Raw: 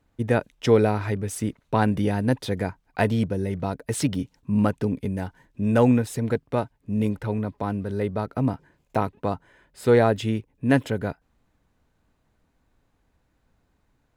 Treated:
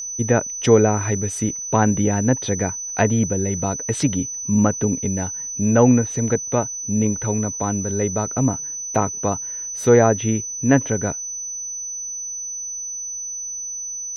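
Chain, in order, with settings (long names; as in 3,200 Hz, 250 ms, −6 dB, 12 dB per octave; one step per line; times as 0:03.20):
treble cut that deepens with the level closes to 2,200 Hz, closed at −18 dBFS
steady tone 6,000 Hz −31 dBFS
level +4 dB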